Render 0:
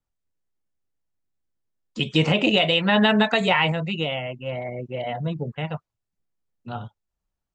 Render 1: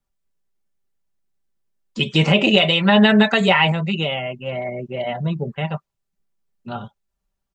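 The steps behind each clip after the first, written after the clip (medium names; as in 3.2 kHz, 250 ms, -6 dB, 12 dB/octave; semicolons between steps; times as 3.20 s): comb 5.1 ms, depth 49%; trim +3 dB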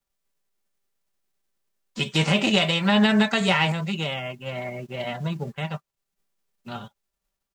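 formants flattened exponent 0.6; trim -5.5 dB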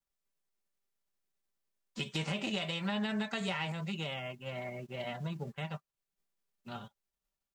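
compression 3:1, threshold -25 dBFS, peak gain reduction 8 dB; trim -8.5 dB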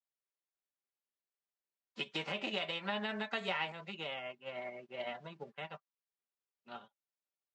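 band-pass 330–3800 Hz; upward expansion 1.5:1, over -55 dBFS; trim +2 dB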